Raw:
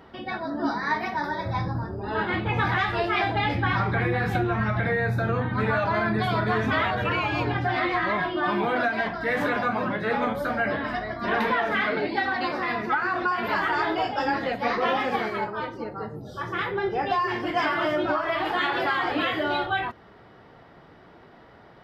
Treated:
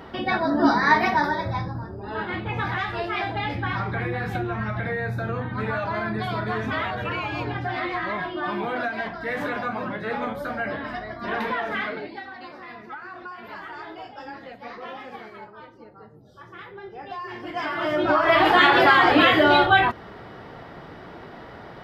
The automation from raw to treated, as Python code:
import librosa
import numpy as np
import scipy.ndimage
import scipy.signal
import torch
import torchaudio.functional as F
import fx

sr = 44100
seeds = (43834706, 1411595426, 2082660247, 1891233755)

y = fx.gain(x, sr, db=fx.line((1.13, 8.0), (1.72, -3.0), (11.82, -3.0), (12.26, -13.0), (16.93, -13.0), (17.73, -3.0), (18.34, 9.5)))